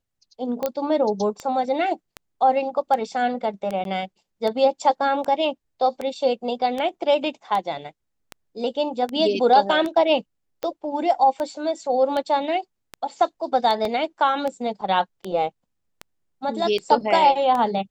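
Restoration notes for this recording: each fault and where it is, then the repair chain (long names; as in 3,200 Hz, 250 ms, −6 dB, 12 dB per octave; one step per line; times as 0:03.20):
scratch tick 78 rpm −15 dBFS
0:00.66: click −10 dBFS
0:03.84–0:03.85: drop-out 12 ms
0:13.85: drop-out 2.6 ms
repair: click removal
repair the gap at 0:03.84, 12 ms
repair the gap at 0:13.85, 2.6 ms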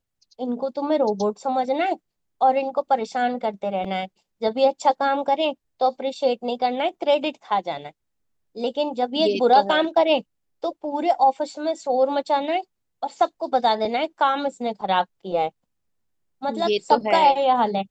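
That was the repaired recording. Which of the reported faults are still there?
none of them is left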